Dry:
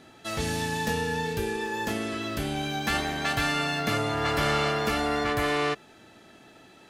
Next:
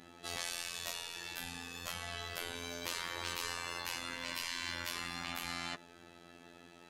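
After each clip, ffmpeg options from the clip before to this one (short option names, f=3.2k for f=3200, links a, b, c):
-af "afftfilt=real='hypot(re,im)*cos(PI*b)':imag='0':win_size=2048:overlap=0.75,afftfilt=real='re*lt(hypot(re,im),0.0501)':imag='im*lt(hypot(re,im),0.0501)':win_size=1024:overlap=0.75,volume=-1dB"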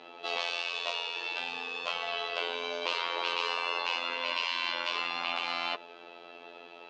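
-af "highpass=460,equalizer=f=460:t=q:w=4:g=8,equalizer=f=660:t=q:w=4:g=4,equalizer=f=1k:t=q:w=4:g=5,equalizer=f=1.8k:t=q:w=4:g=-9,equalizer=f=2.7k:t=q:w=4:g=6,lowpass=f=4.2k:w=0.5412,lowpass=f=4.2k:w=1.3066,volume=8dB"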